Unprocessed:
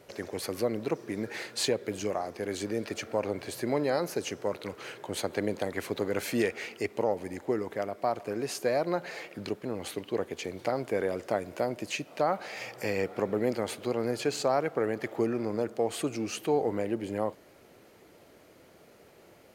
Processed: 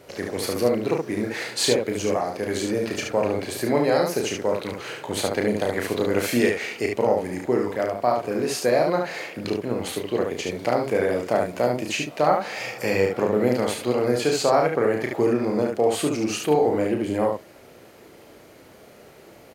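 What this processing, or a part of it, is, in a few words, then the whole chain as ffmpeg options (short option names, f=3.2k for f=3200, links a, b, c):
slapback doubling: -filter_complex "[0:a]asplit=3[a][b][c];[b]adelay=33,volume=-5dB[d];[c]adelay=72,volume=-4dB[e];[a][d][e]amix=inputs=3:normalize=0,volume=6dB"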